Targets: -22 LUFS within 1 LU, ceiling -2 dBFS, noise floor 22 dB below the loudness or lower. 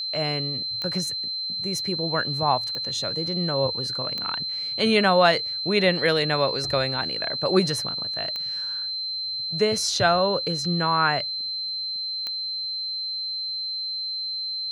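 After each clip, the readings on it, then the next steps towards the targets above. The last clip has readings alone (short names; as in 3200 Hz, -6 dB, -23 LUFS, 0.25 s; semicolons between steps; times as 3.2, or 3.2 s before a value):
clicks 5; steady tone 4100 Hz; tone level -27 dBFS; loudness -24.0 LUFS; peak -5.0 dBFS; loudness target -22.0 LUFS
-> de-click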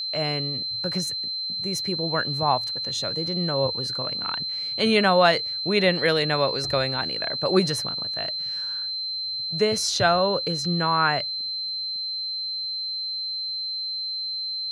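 clicks 0; steady tone 4100 Hz; tone level -27 dBFS
-> notch 4100 Hz, Q 30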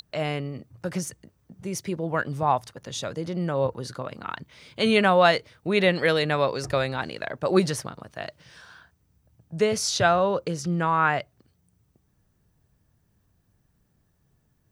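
steady tone none; loudness -25.0 LUFS; peak -5.5 dBFS; loudness target -22.0 LUFS
-> gain +3 dB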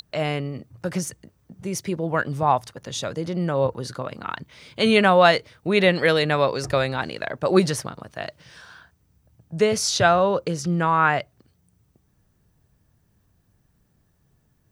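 loudness -22.0 LUFS; peak -2.5 dBFS; noise floor -66 dBFS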